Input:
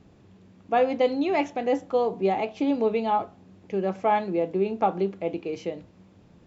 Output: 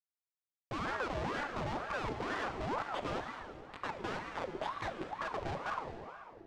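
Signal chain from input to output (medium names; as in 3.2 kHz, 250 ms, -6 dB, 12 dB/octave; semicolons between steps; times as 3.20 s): expander -41 dBFS; 2.82–5.19 s: high-pass 1.1 kHz 24 dB/octave; waveshaping leveller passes 3; compression 6:1, threshold -32 dBFS, peak gain reduction 16.5 dB; Schmitt trigger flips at -31.5 dBFS; distance through air 130 m; multi-head delay 71 ms, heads all three, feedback 57%, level -17 dB; plate-style reverb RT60 2.7 s, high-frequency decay 0.6×, DRR 4.5 dB; ring modulator with a swept carrier 750 Hz, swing 55%, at 2.1 Hz; trim +1 dB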